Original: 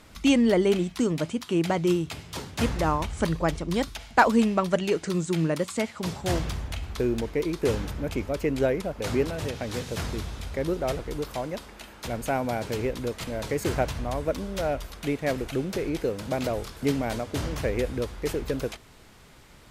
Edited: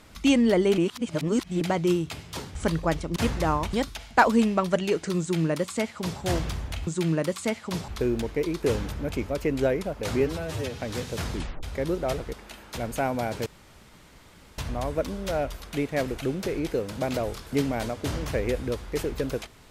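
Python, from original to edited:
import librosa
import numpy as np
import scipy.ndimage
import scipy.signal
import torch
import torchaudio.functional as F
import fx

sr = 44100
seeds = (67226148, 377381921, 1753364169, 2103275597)

y = fx.edit(x, sr, fx.reverse_span(start_s=0.78, length_s=0.83),
    fx.move(start_s=2.55, length_s=0.57, to_s=3.73),
    fx.duplicate(start_s=5.19, length_s=1.01, to_s=6.87),
    fx.stretch_span(start_s=9.19, length_s=0.4, factor=1.5),
    fx.tape_stop(start_s=10.13, length_s=0.29),
    fx.cut(start_s=11.12, length_s=0.51),
    fx.room_tone_fill(start_s=12.76, length_s=1.12), tone=tone)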